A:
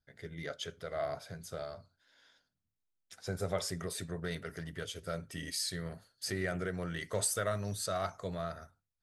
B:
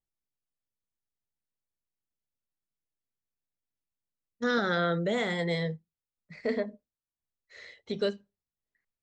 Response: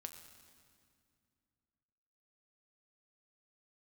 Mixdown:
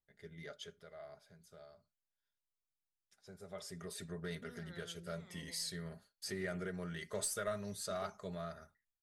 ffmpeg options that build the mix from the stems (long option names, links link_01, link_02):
-filter_complex "[0:a]agate=range=-33dB:threshold=-55dB:ratio=3:detection=peak,aecho=1:1:4.9:0.49,volume=1.5dB,afade=type=out:start_time=0.57:duration=0.4:silence=0.398107,afade=type=in:start_time=3.47:duration=0.61:silence=0.281838,asplit=2[link_01][link_02];[1:a]acompressor=threshold=-43dB:ratio=2.5,aphaser=in_gain=1:out_gain=1:delay=1.3:decay=0.67:speed=0.25:type=triangular,volume=-12dB[link_03];[link_02]apad=whole_len=397965[link_04];[link_03][link_04]sidechaincompress=threshold=-49dB:ratio=8:attack=46:release=467[link_05];[link_01][link_05]amix=inputs=2:normalize=0,aeval=exprs='0.0631*(cos(1*acos(clip(val(0)/0.0631,-1,1)))-cos(1*PI/2))+0.00562*(cos(2*acos(clip(val(0)/0.0631,-1,1)))-cos(2*PI/2))':channel_layout=same"